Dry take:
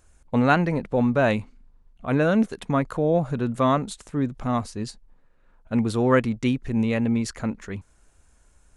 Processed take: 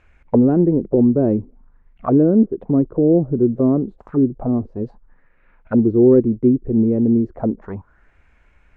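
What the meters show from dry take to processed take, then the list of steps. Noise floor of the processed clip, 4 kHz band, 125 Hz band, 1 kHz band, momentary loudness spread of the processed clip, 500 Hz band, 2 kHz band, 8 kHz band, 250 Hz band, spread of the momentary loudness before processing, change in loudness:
-55 dBFS, under -30 dB, +4.0 dB, -6.0 dB, 11 LU, +6.5 dB, under -15 dB, under -35 dB, +8.5 dB, 11 LU, +7.0 dB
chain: hard clipper -12 dBFS, distortion -23 dB; touch-sensitive low-pass 360–2400 Hz down, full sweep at -23 dBFS; trim +3 dB

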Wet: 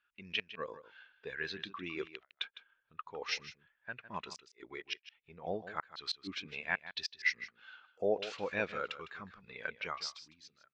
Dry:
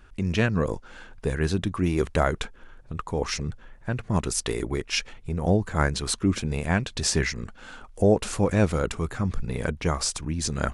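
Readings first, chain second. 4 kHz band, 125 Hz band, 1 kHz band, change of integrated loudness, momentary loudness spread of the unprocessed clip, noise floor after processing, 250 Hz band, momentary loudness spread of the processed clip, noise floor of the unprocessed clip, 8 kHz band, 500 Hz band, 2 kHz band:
-8.5 dB, -30.0 dB, -12.0 dB, -13.5 dB, 11 LU, -81 dBFS, -22.0 dB, 17 LU, -48 dBFS, -23.5 dB, -13.5 dB, -6.0 dB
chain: fade out at the end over 1.00 s; band-pass filter 3.7 kHz, Q 1; inverted gate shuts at -19 dBFS, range -37 dB; distance through air 150 m; on a send: delay 156 ms -9.5 dB; on the sum: spectral contrast expander 1.5:1; trim +2 dB

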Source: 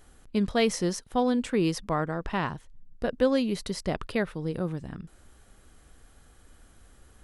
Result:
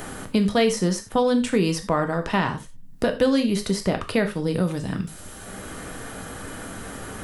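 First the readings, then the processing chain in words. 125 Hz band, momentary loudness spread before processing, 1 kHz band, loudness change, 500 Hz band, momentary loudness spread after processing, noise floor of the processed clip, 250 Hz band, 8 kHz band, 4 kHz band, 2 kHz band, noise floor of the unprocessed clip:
+6.5 dB, 9 LU, +5.0 dB, +5.5 dB, +5.5 dB, 15 LU, -41 dBFS, +5.5 dB, +6.5 dB, +6.0 dB, +6.5 dB, -57 dBFS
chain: treble shelf 6.7 kHz +6 dB; gated-style reverb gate 120 ms falling, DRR 5.5 dB; three bands compressed up and down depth 70%; trim +4.5 dB

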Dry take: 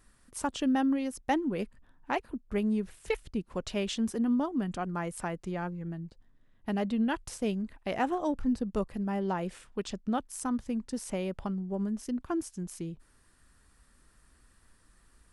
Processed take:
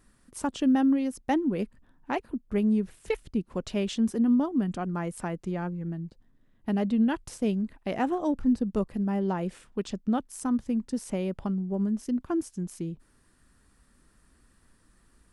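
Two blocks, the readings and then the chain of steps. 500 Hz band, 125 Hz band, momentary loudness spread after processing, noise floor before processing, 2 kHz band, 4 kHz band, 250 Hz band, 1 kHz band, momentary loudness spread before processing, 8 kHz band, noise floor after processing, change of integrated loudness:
+2.0 dB, +4.5 dB, 10 LU, -64 dBFS, -0.5 dB, -1.0 dB, +5.0 dB, 0.0 dB, 10 LU, -1.0 dB, -64 dBFS, +4.0 dB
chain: peaking EQ 230 Hz +6 dB 2.1 oct; trim -1 dB

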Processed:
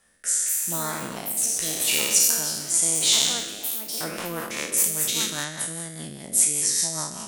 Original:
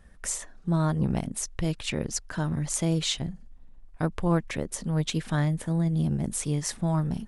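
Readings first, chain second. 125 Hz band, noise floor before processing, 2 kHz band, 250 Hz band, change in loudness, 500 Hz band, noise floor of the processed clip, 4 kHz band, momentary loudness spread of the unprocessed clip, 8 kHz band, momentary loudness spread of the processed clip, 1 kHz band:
-14.5 dB, -50 dBFS, +6.5 dB, -9.5 dB, +6.5 dB, -2.0 dB, -39 dBFS, +11.0 dB, 7 LU, +14.5 dB, 12 LU, +1.0 dB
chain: spectral sustain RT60 1.63 s; RIAA curve recording; ever faster or slower copies 293 ms, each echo +6 st, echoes 3, each echo -6 dB; rotary cabinet horn 0.85 Hz, later 5 Hz, at 3.20 s; bass shelf 130 Hz -8.5 dB; trim -1 dB

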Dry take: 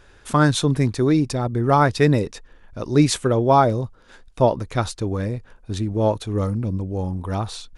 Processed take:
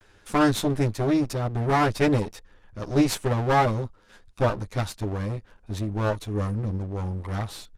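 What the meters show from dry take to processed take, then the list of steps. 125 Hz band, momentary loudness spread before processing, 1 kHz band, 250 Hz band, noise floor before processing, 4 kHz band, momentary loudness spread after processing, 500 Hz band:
-5.0 dB, 11 LU, -5.0 dB, -4.5 dB, -50 dBFS, -5.0 dB, 11 LU, -5.5 dB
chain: comb filter that takes the minimum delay 9.7 ms; resampled via 32 kHz; trim -4 dB

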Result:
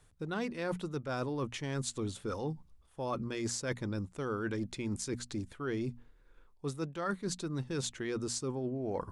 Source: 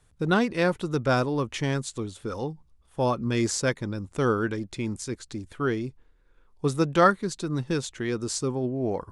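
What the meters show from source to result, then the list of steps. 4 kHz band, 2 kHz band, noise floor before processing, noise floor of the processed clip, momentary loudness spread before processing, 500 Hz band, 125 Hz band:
-7.5 dB, -11.5 dB, -61 dBFS, -64 dBFS, 12 LU, -10.5 dB, -9.0 dB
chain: hum notches 60/120/180/240 Hz; reverse; compression 16:1, threshold -32 dBFS, peak gain reduction 19 dB; reverse

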